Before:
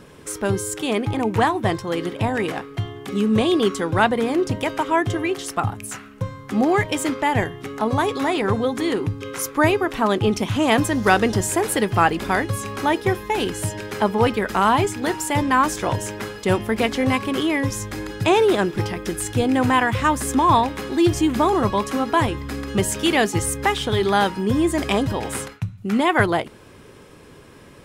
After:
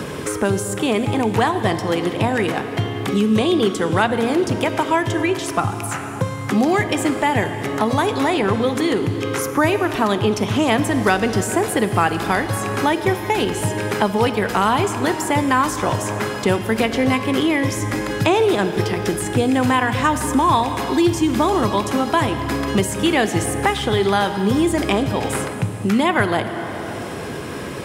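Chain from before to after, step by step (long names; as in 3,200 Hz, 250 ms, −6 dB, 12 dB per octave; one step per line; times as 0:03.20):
high-pass filter 66 Hz
convolution reverb RT60 2.2 s, pre-delay 31 ms, DRR 10.5 dB
multiband upward and downward compressor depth 70%
level +1 dB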